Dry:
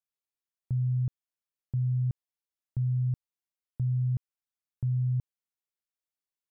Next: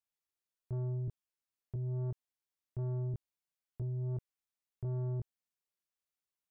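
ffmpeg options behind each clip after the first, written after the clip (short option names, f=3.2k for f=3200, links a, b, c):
-af "flanger=delay=16.5:depth=2.2:speed=1.4,asoftclip=type=tanh:threshold=-35.5dB,volume=1.5dB"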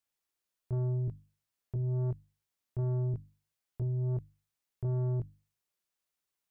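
-af "bandreject=f=50:t=h:w=6,bandreject=f=100:t=h:w=6,bandreject=f=150:t=h:w=6,bandreject=f=200:t=h:w=6,bandreject=f=250:t=h:w=6,bandreject=f=300:t=h:w=6,volume=5dB"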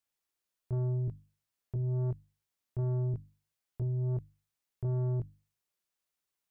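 -af anull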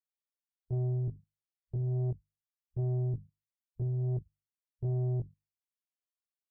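-af "afwtdn=0.00891"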